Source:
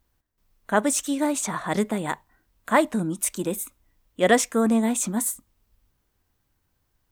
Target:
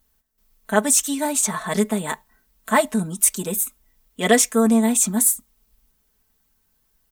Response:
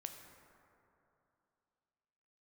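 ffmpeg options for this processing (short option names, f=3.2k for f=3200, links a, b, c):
-af "highshelf=f=5k:g=10,aecho=1:1:4.6:0.82,volume=-1dB"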